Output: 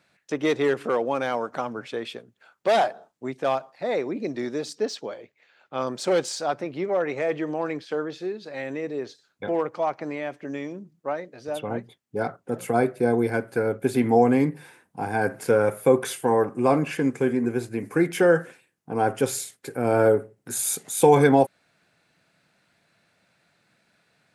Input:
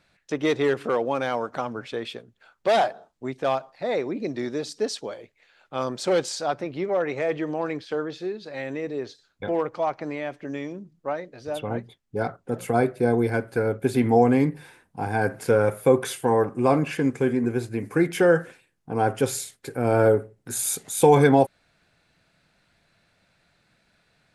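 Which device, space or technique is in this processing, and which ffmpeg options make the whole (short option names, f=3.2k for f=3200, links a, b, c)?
exciter from parts: -filter_complex "[0:a]asplit=2[a][b];[b]highpass=f=3.5k:w=0.5412,highpass=f=3.5k:w=1.3066,asoftclip=type=tanh:threshold=-37dB,volume=-12dB[c];[a][c]amix=inputs=2:normalize=0,highpass=130,asettb=1/sr,asplit=3[d][e][f];[d]atrim=end=4.754[g];[e]atrim=start=4.75:end=5.87,asetpts=PTS-STARTPTS,afade=t=in:d=0.004:c=qsin,afade=t=out:st=1.116:d=0.004:c=qsin,equalizer=f=9.7k:w=1.3:g=-12[h];[f]atrim=start=5.866[i];[g][h]acrossfade=d=0.004:c1=hsin:c2=qsin[j];[j][i]acrossfade=d=0.004:c1=qsin:c2=hsin"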